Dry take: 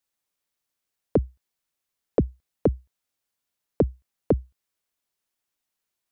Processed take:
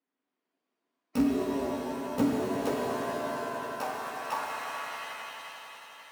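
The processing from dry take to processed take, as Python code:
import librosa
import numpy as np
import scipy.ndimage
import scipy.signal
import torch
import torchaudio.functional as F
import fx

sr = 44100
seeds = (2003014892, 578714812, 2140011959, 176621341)

p1 = fx.bit_reversed(x, sr, seeds[0], block=128)
p2 = fx.spec_gate(p1, sr, threshold_db=-30, keep='strong')
p3 = scipy.signal.sosfilt(scipy.signal.butter(2, 1900.0, 'lowpass', fs=sr, output='sos'), p2)
p4 = (np.mod(10.0 ** (26.5 / 20.0) * p3 + 1.0, 2.0) - 1.0) / 10.0 ** (26.5 / 20.0)
p5 = p3 + F.gain(torch.from_numpy(p4), -5.0).numpy()
p6 = fx.low_shelf(p5, sr, hz=280.0, db=9.5, at=(1.19, 2.22))
p7 = fx.filter_sweep_highpass(p6, sr, from_hz=260.0, to_hz=980.0, start_s=2.0, end_s=4.47, q=5.4)
p8 = p7 + fx.echo_swell(p7, sr, ms=89, loudest=5, wet_db=-15.0, dry=0)
p9 = fx.rev_shimmer(p8, sr, seeds[1], rt60_s=2.7, semitones=7, shimmer_db=-2, drr_db=-2.0)
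y = F.gain(torch.from_numpy(p9), -4.5).numpy()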